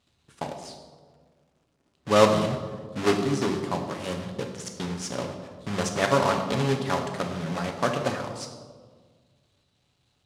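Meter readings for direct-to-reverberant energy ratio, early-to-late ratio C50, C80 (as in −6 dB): 3.0 dB, 7.0 dB, 8.5 dB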